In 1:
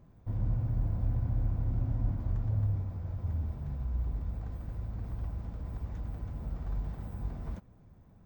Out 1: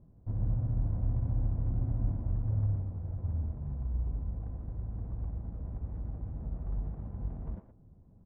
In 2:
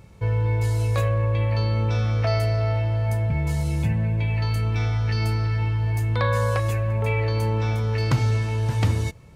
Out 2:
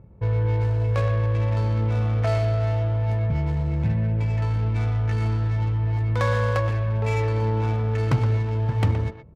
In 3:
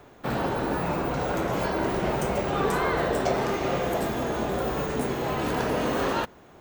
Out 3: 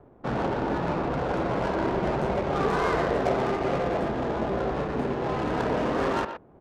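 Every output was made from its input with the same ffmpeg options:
-filter_complex "[0:a]adynamicsmooth=sensitivity=3:basefreq=670,asplit=2[a][b];[b]adelay=120,highpass=300,lowpass=3.4k,asoftclip=type=hard:threshold=-19.5dB,volume=-8dB[c];[a][c]amix=inputs=2:normalize=0"

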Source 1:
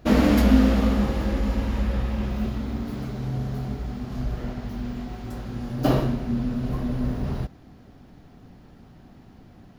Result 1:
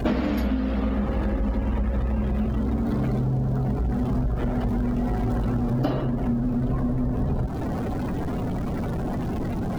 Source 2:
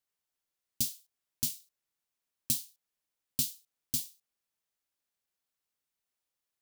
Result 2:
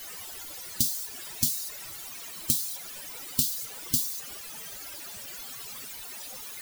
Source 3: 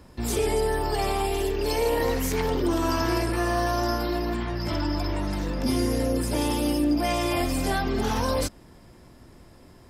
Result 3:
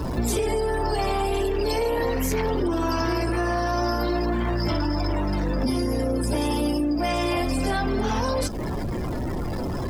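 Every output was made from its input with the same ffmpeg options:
-af "aeval=exprs='val(0)+0.5*0.0355*sgn(val(0))':c=same,afftdn=nr=17:nf=-37,acompressor=threshold=-28dB:ratio=16,volume=7.5dB"

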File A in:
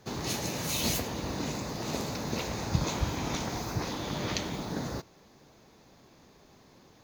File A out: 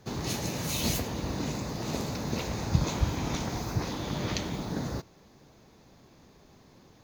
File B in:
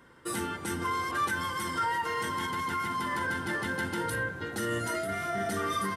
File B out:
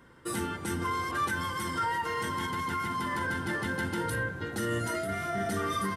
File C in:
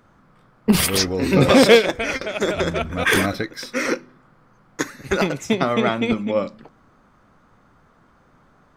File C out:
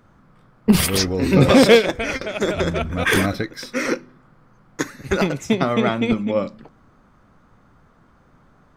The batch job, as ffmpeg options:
-af "lowshelf=f=230:g=5.5,volume=-1dB"

